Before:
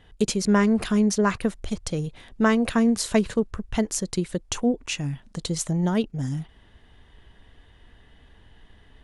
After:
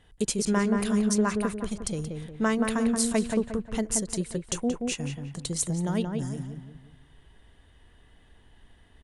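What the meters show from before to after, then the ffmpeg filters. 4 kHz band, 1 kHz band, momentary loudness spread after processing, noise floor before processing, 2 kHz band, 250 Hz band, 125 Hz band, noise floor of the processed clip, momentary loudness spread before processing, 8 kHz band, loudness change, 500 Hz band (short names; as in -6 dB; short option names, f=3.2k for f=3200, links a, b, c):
-4.0 dB, -4.0 dB, 10 LU, -55 dBFS, -4.5 dB, -4.0 dB, -4.0 dB, -58 dBFS, 10 LU, +1.0 dB, -3.5 dB, -4.0 dB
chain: -filter_complex "[0:a]equalizer=f=9.1k:t=o:w=0.71:g=10.5,asplit=2[a][b];[b]adelay=178,lowpass=f=1.9k:p=1,volume=-4dB,asplit=2[c][d];[d]adelay=178,lowpass=f=1.9k:p=1,volume=0.42,asplit=2[e][f];[f]adelay=178,lowpass=f=1.9k:p=1,volume=0.42,asplit=2[g][h];[h]adelay=178,lowpass=f=1.9k:p=1,volume=0.42,asplit=2[i][j];[j]adelay=178,lowpass=f=1.9k:p=1,volume=0.42[k];[c][e][g][i][k]amix=inputs=5:normalize=0[l];[a][l]amix=inputs=2:normalize=0,volume=-5.5dB"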